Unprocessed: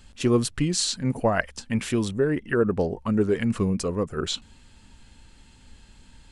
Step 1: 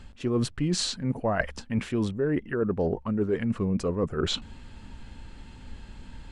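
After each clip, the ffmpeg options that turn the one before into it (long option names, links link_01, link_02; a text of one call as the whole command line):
ffmpeg -i in.wav -af "lowpass=frequency=1800:poles=1,areverse,acompressor=threshold=-32dB:ratio=6,areverse,volume=8dB" out.wav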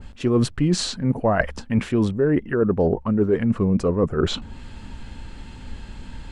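ffmpeg -i in.wav -af "adynamicequalizer=threshold=0.00501:dfrequency=1700:dqfactor=0.7:tfrequency=1700:tqfactor=0.7:attack=5:release=100:ratio=0.375:range=3.5:mode=cutabove:tftype=highshelf,volume=7dB" out.wav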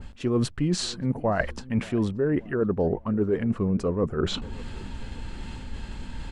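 ffmpeg -i in.wav -filter_complex "[0:a]areverse,acompressor=mode=upward:threshold=-21dB:ratio=2.5,areverse,asplit=2[link_01][link_02];[link_02]adelay=578,lowpass=frequency=1300:poles=1,volume=-21dB,asplit=2[link_03][link_04];[link_04]adelay=578,lowpass=frequency=1300:poles=1,volume=0.48,asplit=2[link_05][link_06];[link_06]adelay=578,lowpass=frequency=1300:poles=1,volume=0.48[link_07];[link_01][link_03][link_05][link_07]amix=inputs=4:normalize=0,volume=-5dB" out.wav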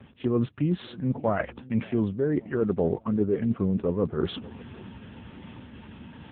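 ffmpeg -i in.wav -ar 8000 -c:a libopencore_amrnb -b:a 6700 out.amr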